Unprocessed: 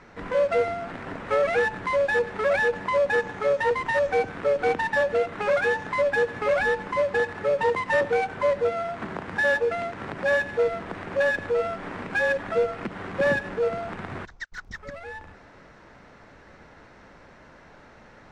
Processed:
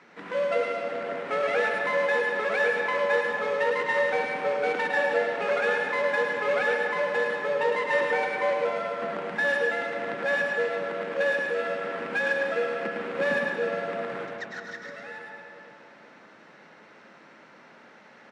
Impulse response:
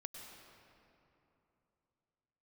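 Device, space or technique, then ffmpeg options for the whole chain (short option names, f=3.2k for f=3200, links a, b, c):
PA in a hall: -filter_complex "[0:a]highpass=f=170:w=0.5412,highpass=f=170:w=1.3066,equalizer=f=2.8k:t=o:w=1.7:g=5,aecho=1:1:107:0.501[a];[1:a]atrim=start_sample=2205[b];[a][b]afir=irnorm=-1:irlink=0"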